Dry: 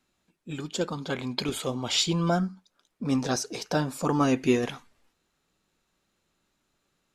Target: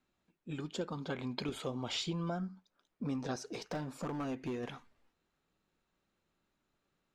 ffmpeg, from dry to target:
-filter_complex "[0:a]lowpass=f=2.7k:p=1,acompressor=threshold=-28dB:ratio=8,asettb=1/sr,asplit=3[a][b][c];[a]atrim=end=3.404[d];[b]atrim=start=3.4:end=4.69,asetpts=PTS-STARTPTS,afade=t=in:d=0.004:c=qsin,afade=t=out:st=1.286:d=0.004:c=qsin,asoftclip=type=hard:threshold=-28.5dB[e];[c]atrim=start=4.686[f];[d][e]acrossfade=d=0.004:c1=hsin:c2=qsin[g];[g][f]acrossfade=d=0.004:c1=qsin:c2=hsin,volume=-5dB"

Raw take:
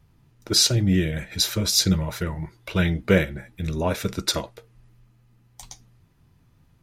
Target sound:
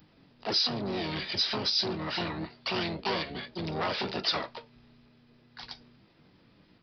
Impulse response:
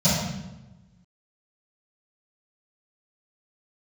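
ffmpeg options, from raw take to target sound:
-filter_complex "[0:a]asplit=3[a][b][c];[b]asetrate=55563,aresample=44100,atempo=0.793701,volume=-3dB[d];[c]asetrate=88200,aresample=44100,atempo=0.5,volume=0dB[e];[a][d][e]amix=inputs=3:normalize=0,acompressor=threshold=-21dB:ratio=6,aresample=11025,asoftclip=type=tanh:threshold=-24.5dB,aresample=44100,aemphasis=mode=production:type=bsi"

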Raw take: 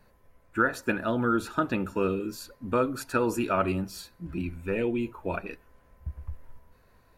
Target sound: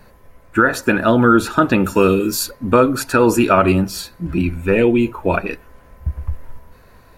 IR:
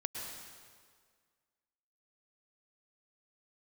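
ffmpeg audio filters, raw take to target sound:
-filter_complex "[0:a]asettb=1/sr,asplit=3[a][b][c];[a]atrim=end=1.844[d];[b]atrim=start=1.84:end=2.51,asetpts=PTS-STARTPTS,afade=t=in:d=0.004:c=qsin,afade=t=out:st=0.666:d=0.004:c=qsin,highshelf=f=4.2k:g=10[e];[c]atrim=start=2.506[f];[d][e]acrossfade=d=0.004:c1=hsin:c2=qsin[g];[g][f]acrossfade=d=0.004:c1=qsin:c2=hsin,alimiter=level_in=15dB:limit=-1dB:release=50:level=0:latency=1,volume=-1dB"

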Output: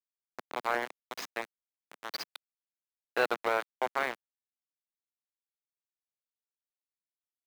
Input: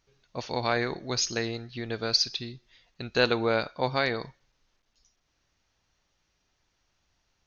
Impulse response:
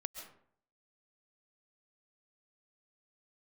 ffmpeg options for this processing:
-filter_complex "[0:a]lowshelf=f=480:g=-6,acrusher=bits=3:mix=0:aa=0.000001,acrossover=split=220 2400:gain=0.141 1 0.126[a][b][c];[a][b][c]amix=inputs=3:normalize=0,volume=-1dB"

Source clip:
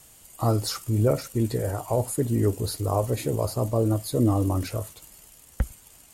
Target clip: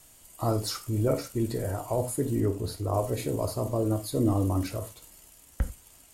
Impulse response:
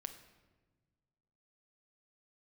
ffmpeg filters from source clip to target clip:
-filter_complex "[0:a]asettb=1/sr,asplit=3[a][b][c];[a]atrim=end=2.404[d];[b]atrim=start=2.4:end=2.94,asetpts=PTS-STARTPTS,afade=t=in:d=0.004:c=qsin,afade=t=out:st=0.536:d=0.004:c=qsin,highshelf=f=4.2k:g=-7.5[e];[c]atrim=start=2.936[f];[d][e]acrossfade=d=0.004:c1=hsin:c2=qsin[g];[g][f]acrossfade=d=0.004:c1=qsin:c2=hsin[h];[1:a]atrim=start_sample=2205,afade=t=out:st=0.24:d=0.01,atrim=end_sample=11025,asetrate=88200,aresample=44100[i];[h][i]afir=irnorm=-1:irlink=0,volume=6.5dB"

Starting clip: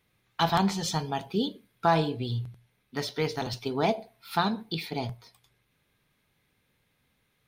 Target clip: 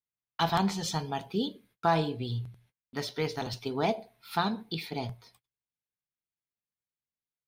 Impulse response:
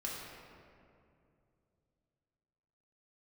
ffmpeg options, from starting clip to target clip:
-af "agate=range=-30dB:threshold=-59dB:ratio=16:detection=peak,volume=-2.5dB"

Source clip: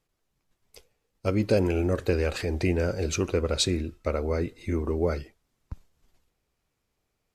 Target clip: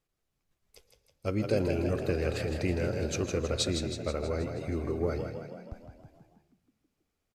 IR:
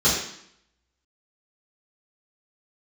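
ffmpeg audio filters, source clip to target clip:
-filter_complex "[0:a]bandreject=f=940:w=14,asplit=9[a][b][c][d][e][f][g][h][i];[b]adelay=160,afreqshift=34,volume=-7dB[j];[c]adelay=320,afreqshift=68,volume=-11.6dB[k];[d]adelay=480,afreqshift=102,volume=-16.2dB[l];[e]adelay=640,afreqshift=136,volume=-20.7dB[m];[f]adelay=800,afreqshift=170,volume=-25.3dB[n];[g]adelay=960,afreqshift=204,volume=-29.9dB[o];[h]adelay=1120,afreqshift=238,volume=-34.5dB[p];[i]adelay=1280,afreqshift=272,volume=-39.1dB[q];[a][j][k][l][m][n][o][p][q]amix=inputs=9:normalize=0,asplit=2[r][s];[1:a]atrim=start_sample=2205,adelay=108[t];[s][t]afir=irnorm=-1:irlink=0,volume=-34dB[u];[r][u]amix=inputs=2:normalize=0,volume=-5.5dB"

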